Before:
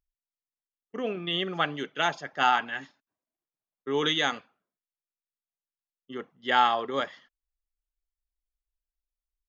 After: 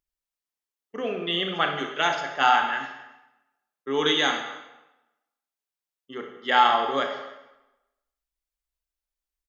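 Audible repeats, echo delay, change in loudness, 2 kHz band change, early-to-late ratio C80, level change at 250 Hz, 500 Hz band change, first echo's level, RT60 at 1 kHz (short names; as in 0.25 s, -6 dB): 1, 0.284 s, +3.5 dB, +4.0 dB, 8.0 dB, +2.0 dB, +3.5 dB, -23.0 dB, 1.0 s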